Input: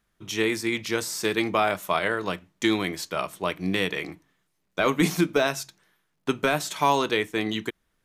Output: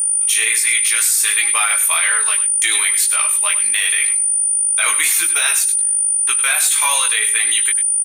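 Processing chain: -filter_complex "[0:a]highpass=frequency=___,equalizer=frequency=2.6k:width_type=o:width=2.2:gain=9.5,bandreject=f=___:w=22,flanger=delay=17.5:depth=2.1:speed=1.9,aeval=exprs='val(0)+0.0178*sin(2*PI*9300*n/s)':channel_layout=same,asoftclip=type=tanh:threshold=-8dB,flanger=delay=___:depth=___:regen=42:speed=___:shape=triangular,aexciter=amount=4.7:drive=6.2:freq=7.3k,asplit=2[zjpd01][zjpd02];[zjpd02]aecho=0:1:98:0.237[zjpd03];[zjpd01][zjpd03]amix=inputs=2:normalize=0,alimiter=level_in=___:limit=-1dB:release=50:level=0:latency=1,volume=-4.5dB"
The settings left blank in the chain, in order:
1.4k, 3k, 4.3, 3.1, 0.89, 16dB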